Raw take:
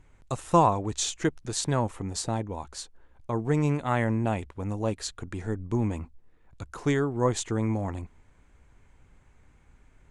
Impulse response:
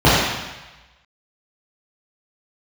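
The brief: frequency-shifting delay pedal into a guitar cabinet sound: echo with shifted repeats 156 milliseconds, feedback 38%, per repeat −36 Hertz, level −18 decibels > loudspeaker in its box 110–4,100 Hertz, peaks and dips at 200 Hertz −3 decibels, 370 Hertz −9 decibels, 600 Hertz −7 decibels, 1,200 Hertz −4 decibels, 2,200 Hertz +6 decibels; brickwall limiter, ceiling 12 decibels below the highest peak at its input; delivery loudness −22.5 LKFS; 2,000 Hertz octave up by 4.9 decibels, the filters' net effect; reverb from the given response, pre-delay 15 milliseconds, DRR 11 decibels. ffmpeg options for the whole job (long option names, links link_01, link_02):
-filter_complex "[0:a]equalizer=frequency=2000:width_type=o:gain=3.5,alimiter=limit=-19.5dB:level=0:latency=1,asplit=2[link_01][link_02];[1:a]atrim=start_sample=2205,adelay=15[link_03];[link_02][link_03]afir=irnorm=-1:irlink=0,volume=-39.5dB[link_04];[link_01][link_04]amix=inputs=2:normalize=0,asplit=4[link_05][link_06][link_07][link_08];[link_06]adelay=156,afreqshift=-36,volume=-18dB[link_09];[link_07]adelay=312,afreqshift=-72,volume=-26.4dB[link_10];[link_08]adelay=468,afreqshift=-108,volume=-34.8dB[link_11];[link_05][link_09][link_10][link_11]amix=inputs=4:normalize=0,highpass=110,equalizer=frequency=200:width_type=q:width=4:gain=-3,equalizer=frequency=370:width_type=q:width=4:gain=-9,equalizer=frequency=600:width_type=q:width=4:gain=-7,equalizer=frequency=1200:width_type=q:width=4:gain=-4,equalizer=frequency=2200:width_type=q:width=4:gain=6,lowpass=frequency=4100:width=0.5412,lowpass=frequency=4100:width=1.3066,volume=11.5dB"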